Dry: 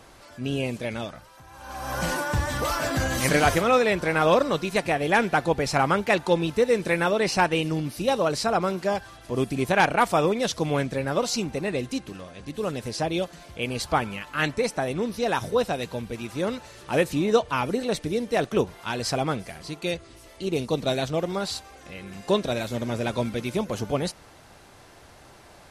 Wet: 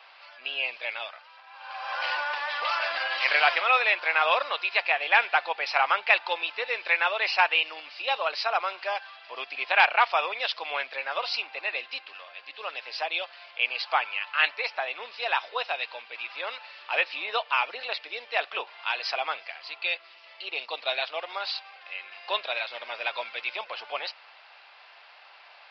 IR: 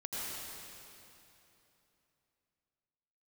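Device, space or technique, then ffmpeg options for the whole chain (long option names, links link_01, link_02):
musical greeting card: -af "aresample=11025,aresample=44100,highpass=frequency=730:width=0.5412,highpass=frequency=730:width=1.3066,equalizer=frequency=2600:width_type=o:width=0.52:gain=8.5"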